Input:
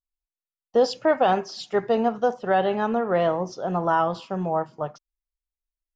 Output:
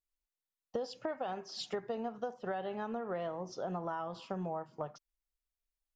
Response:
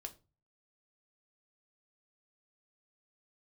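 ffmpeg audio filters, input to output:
-af "acompressor=threshold=0.0224:ratio=10,volume=0.794"

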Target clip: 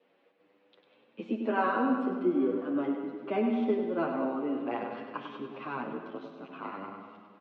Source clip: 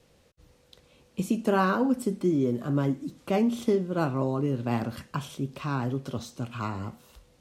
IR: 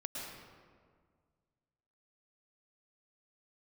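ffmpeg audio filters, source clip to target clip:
-filter_complex "[0:a]lowpass=f=2900:w=0.5412,lowpass=f=2900:w=1.3066,asplit=2[s0][s1];[s1]aecho=0:1:98|196|294|392|490|588|686:0.447|0.259|0.15|0.0872|0.0505|0.0293|0.017[s2];[s0][s2]amix=inputs=2:normalize=0,asettb=1/sr,asplit=3[s3][s4][s5];[s3]atrim=end=5.824[s6];[s4]atrim=start=5.82:end=6.68,asetpts=PTS-STARTPTS,afade=t=in:d=0.004:c=qsin,afade=t=out:st=0.856:d=0.004:c=qsin,aeval=exprs='val(0)*sin(2*PI*36*n/s)':c=same[s7];[s5]atrim=start=6.676[s8];[s6][s7]acrossfade=d=0.004:c1=hsin:c2=qsin[s9];[s9][s8]acrossfade=d=0.004:c1=qsin:c2=hsin,highpass=f=250:w=0.5412,highpass=f=250:w=1.3066,asplit=2[s10][s11];[s11]adelay=816.3,volume=0.1,highshelf=f=4000:g=-18.4[s12];[s10][s12]amix=inputs=2:normalize=0,asplit=2[s13][s14];[1:a]atrim=start_sample=2205[s15];[s14][s15]afir=irnorm=-1:irlink=0,volume=0.473[s16];[s13][s16]amix=inputs=2:normalize=0,asplit=2[s17][s18];[s18]adelay=8.4,afreqshift=0.45[s19];[s17][s19]amix=inputs=2:normalize=1,volume=0.75"

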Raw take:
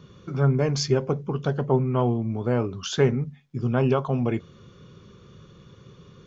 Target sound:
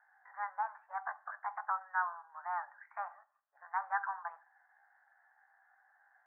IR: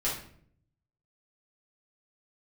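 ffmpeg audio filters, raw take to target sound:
-filter_complex "[0:a]asetrate=64194,aresample=44100,atempo=0.686977,asuperpass=centerf=1200:order=12:qfactor=1.2,asplit=2[s0][s1];[1:a]atrim=start_sample=2205[s2];[s1][s2]afir=irnorm=-1:irlink=0,volume=0.075[s3];[s0][s3]amix=inputs=2:normalize=0,volume=0.562"

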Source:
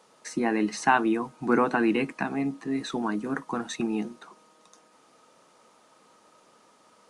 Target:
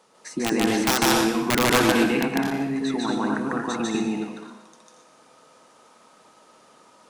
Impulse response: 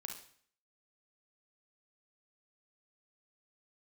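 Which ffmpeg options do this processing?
-filter_complex "[0:a]aeval=exprs='(mod(5.01*val(0)+1,2)-1)/5.01':c=same,asplit=2[s0][s1];[1:a]atrim=start_sample=2205,asetrate=26019,aresample=44100,adelay=148[s2];[s1][s2]afir=irnorm=-1:irlink=0,volume=1.41[s3];[s0][s3]amix=inputs=2:normalize=0"

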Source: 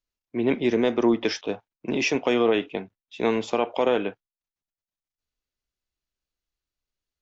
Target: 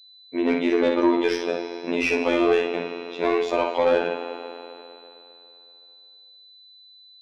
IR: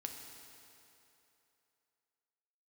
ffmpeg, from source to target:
-filter_complex "[0:a]asplit=2[s0][s1];[1:a]atrim=start_sample=2205,adelay=56[s2];[s1][s2]afir=irnorm=-1:irlink=0,volume=0.75[s3];[s0][s3]amix=inputs=2:normalize=0,afftfilt=real='hypot(re,im)*cos(PI*b)':imag='0':win_size=2048:overlap=0.75,asplit=2[s4][s5];[s5]highpass=f=720:p=1,volume=7.08,asoftclip=type=tanh:threshold=0.447[s6];[s4][s6]amix=inputs=2:normalize=0,lowpass=f=1800:p=1,volume=0.501,aeval=exprs='val(0)+0.00398*sin(2*PI*4000*n/s)':c=same"

